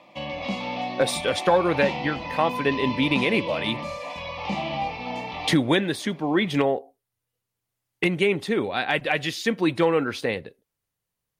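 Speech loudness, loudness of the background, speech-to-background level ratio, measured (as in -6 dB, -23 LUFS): -24.0 LUFS, -31.0 LUFS, 7.0 dB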